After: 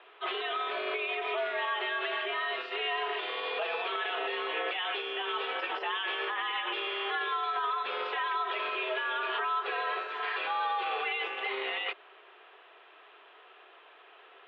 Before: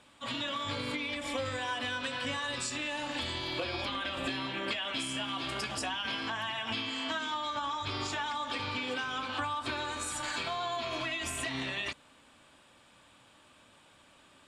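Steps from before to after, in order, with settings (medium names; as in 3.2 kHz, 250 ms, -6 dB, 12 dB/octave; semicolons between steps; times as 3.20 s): peak limiter -29 dBFS, peak gain reduction 8 dB; mistuned SSB +130 Hz 250–3000 Hz; trim +6.5 dB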